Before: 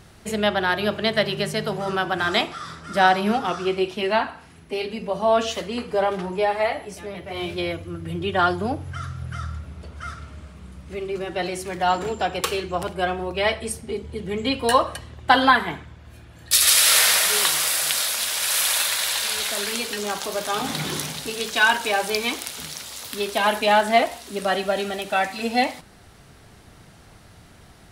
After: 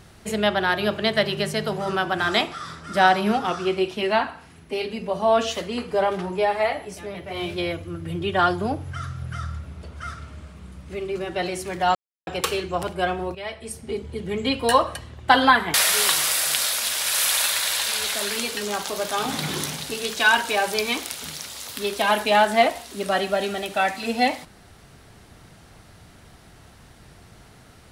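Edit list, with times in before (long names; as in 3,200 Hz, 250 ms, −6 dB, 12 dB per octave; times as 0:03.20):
0:11.95–0:12.27: silence
0:13.35–0:13.91: fade in quadratic, from −12.5 dB
0:15.74–0:17.10: remove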